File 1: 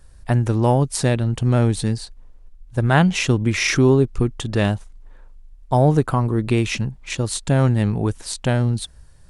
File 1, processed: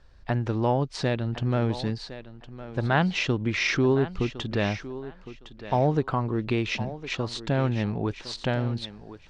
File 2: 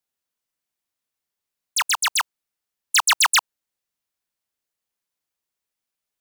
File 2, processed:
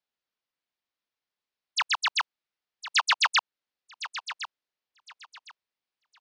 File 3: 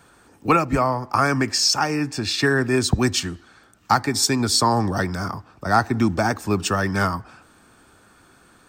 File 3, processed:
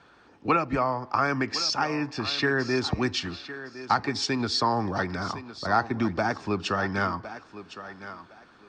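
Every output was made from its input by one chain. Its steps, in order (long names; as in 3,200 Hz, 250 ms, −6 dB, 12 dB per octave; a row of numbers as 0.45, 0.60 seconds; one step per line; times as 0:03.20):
low-pass filter 4,900 Hz 24 dB per octave
low-shelf EQ 180 Hz −7 dB
in parallel at −2 dB: downward compressor, threshold −26 dBFS
on the sum: feedback echo with a high-pass in the loop 1,060 ms, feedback 22%, high-pass 190 Hz, level −13 dB
loudness normalisation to −27 LKFS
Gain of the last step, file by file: −7.0, −6.5, −7.0 decibels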